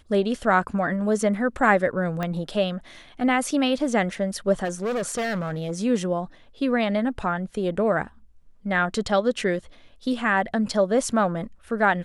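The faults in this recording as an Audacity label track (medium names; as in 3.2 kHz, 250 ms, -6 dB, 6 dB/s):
2.230000	2.230000	pop -15 dBFS
4.640000	5.720000	clipped -23 dBFS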